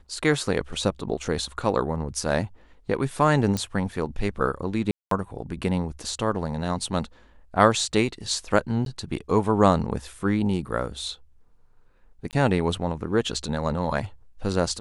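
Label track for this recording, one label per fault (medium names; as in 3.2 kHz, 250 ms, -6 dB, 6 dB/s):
3.570000	3.570000	pop -13 dBFS
4.910000	5.110000	dropout 203 ms
8.850000	8.860000	dropout 12 ms
12.310000	12.330000	dropout 18 ms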